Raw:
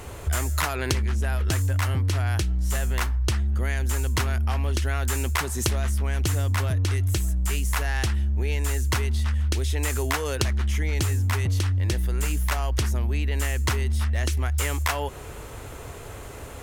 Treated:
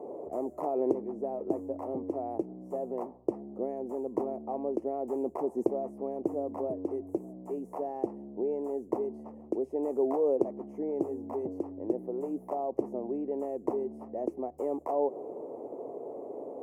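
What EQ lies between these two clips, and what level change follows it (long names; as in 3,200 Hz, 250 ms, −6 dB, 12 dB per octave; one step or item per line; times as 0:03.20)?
high-pass filter 280 Hz 24 dB per octave
inverse Chebyshev low-pass filter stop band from 1,400 Hz, stop band 40 dB
+5.0 dB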